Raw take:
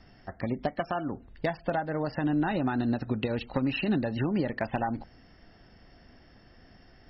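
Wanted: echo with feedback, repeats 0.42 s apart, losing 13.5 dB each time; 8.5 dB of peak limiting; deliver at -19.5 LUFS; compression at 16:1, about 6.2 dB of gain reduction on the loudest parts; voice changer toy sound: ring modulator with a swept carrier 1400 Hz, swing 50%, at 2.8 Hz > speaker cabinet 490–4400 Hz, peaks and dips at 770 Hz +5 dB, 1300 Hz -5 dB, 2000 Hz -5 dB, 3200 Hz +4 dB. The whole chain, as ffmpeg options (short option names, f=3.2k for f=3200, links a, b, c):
-af "acompressor=threshold=-29dB:ratio=16,alimiter=level_in=2dB:limit=-24dB:level=0:latency=1,volume=-2dB,aecho=1:1:420|840:0.211|0.0444,aeval=exprs='val(0)*sin(2*PI*1400*n/s+1400*0.5/2.8*sin(2*PI*2.8*n/s))':c=same,highpass=490,equalizer=f=770:t=q:w=4:g=5,equalizer=f=1.3k:t=q:w=4:g=-5,equalizer=f=2k:t=q:w=4:g=-5,equalizer=f=3.2k:t=q:w=4:g=4,lowpass=f=4.4k:w=0.5412,lowpass=f=4.4k:w=1.3066,volume=20.5dB"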